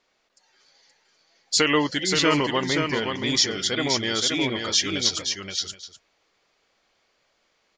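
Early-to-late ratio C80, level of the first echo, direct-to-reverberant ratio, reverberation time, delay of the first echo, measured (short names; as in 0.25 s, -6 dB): none, -5.0 dB, none, none, 0.525 s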